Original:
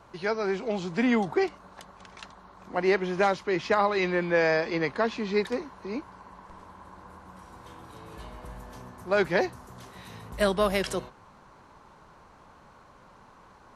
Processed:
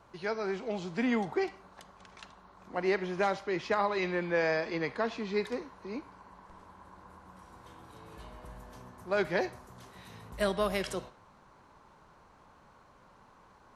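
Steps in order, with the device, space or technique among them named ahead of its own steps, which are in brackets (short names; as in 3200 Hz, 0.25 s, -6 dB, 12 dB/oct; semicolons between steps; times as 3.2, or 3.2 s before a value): filtered reverb send (on a send: HPF 580 Hz + LPF 6500 Hz + reverb RT60 0.50 s, pre-delay 36 ms, DRR 14.5 dB); on the sum: gain -5.5 dB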